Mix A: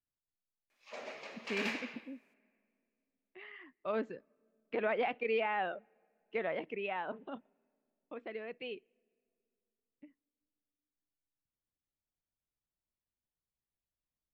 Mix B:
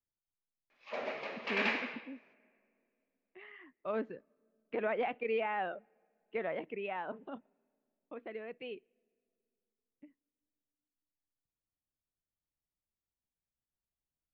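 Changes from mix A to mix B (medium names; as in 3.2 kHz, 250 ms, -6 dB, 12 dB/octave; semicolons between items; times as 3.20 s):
background +8.0 dB; master: add distance through air 220 m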